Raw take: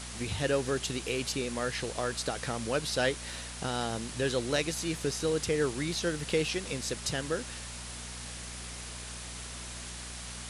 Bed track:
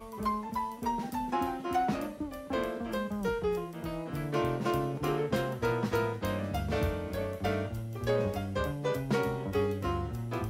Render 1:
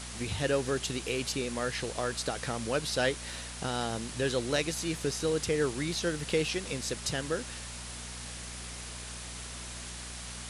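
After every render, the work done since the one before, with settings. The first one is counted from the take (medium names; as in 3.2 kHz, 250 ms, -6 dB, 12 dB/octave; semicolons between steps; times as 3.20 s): no audible change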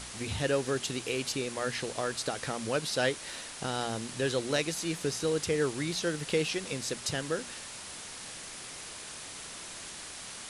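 de-hum 60 Hz, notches 4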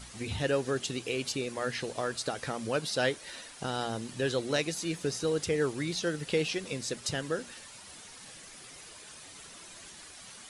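noise reduction 9 dB, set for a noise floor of -44 dBFS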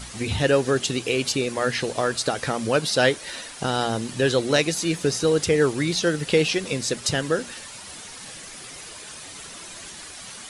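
trim +9.5 dB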